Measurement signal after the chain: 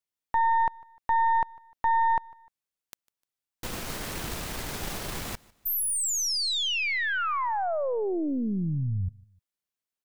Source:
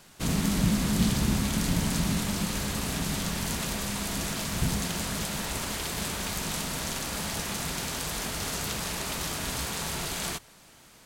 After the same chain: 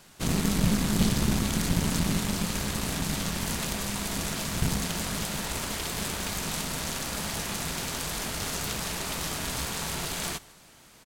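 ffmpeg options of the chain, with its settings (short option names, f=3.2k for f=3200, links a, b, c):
-af "aeval=exprs='0.251*(cos(1*acos(clip(val(0)/0.251,-1,1)))-cos(1*PI/2))+0.0355*(cos(6*acos(clip(val(0)/0.251,-1,1)))-cos(6*PI/2))+0.01*(cos(8*acos(clip(val(0)/0.251,-1,1)))-cos(8*PI/2))':c=same,aecho=1:1:151|302:0.0631|0.0246"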